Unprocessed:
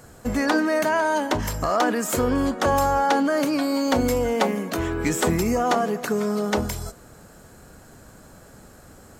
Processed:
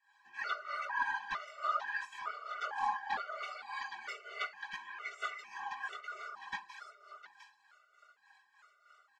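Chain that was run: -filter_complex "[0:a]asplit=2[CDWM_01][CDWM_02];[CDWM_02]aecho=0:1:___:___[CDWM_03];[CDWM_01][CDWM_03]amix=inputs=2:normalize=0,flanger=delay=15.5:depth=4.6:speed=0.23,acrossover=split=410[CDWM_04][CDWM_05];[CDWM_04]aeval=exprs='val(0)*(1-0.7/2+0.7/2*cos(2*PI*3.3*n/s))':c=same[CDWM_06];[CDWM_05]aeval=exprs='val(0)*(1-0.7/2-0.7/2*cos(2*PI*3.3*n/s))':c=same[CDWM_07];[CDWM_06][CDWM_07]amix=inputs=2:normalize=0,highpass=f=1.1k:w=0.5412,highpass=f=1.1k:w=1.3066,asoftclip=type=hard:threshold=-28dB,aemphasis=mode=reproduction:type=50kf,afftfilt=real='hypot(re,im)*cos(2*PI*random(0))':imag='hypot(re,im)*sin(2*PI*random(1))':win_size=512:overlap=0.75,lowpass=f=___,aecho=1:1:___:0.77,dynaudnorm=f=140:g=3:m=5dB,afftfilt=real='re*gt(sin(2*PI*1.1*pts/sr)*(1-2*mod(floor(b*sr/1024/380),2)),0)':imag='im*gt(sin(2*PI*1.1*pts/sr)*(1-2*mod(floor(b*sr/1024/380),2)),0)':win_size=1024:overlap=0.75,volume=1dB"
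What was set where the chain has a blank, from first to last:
706, 0.299, 3.6k, 4.9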